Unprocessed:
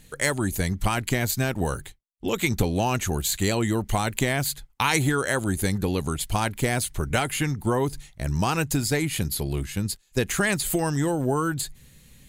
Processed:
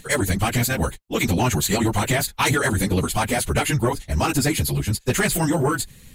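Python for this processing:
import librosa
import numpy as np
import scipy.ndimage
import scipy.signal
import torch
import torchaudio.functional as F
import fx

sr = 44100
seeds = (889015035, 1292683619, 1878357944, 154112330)

y = fx.stretch_vocoder_free(x, sr, factor=0.5)
y = fx.fold_sine(y, sr, drive_db=5, ceiling_db=-13.0)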